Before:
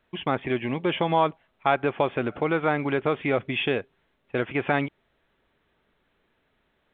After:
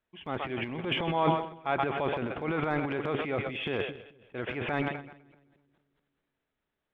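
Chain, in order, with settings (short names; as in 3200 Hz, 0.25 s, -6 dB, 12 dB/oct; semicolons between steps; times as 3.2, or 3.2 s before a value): split-band echo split 420 Hz, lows 0.217 s, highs 0.127 s, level -13 dB; transient shaper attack -4 dB, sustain +12 dB; upward expander 1.5:1, over -40 dBFS; gain -4.5 dB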